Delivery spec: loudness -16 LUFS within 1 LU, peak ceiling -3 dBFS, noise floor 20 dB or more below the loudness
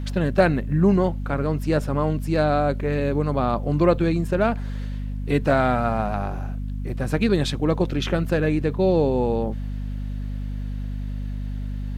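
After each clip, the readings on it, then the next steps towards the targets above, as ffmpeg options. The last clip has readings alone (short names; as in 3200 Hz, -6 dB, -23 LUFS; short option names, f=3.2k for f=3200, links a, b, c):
hum 50 Hz; harmonics up to 250 Hz; hum level -26 dBFS; loudness -23.5 LUFS; peak -5.0 dBFS; loudness target -16.0 LUFS
-> -af "bandreject=f=50:t=h:w=4,bandreject=f=100:t=h:w=4,bandreject=f=150:t=h:w=4,bandreject=f=200:t=h:w=4,bandreject=f=250:t=h:w=4"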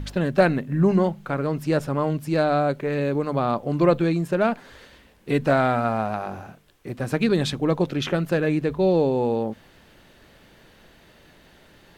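hum none; loudness -23.0 LUFS; peak -5.5 dBFS; loudness target -16.0 LUFS
-> -af "volume=7dB,alimiter=limit=-3dB:level=0:latency=1"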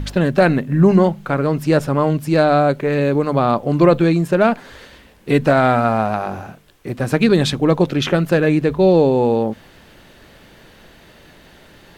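loudness -16.0 LUFS; peak -3.0 dBFS; noise floor -47 dBFS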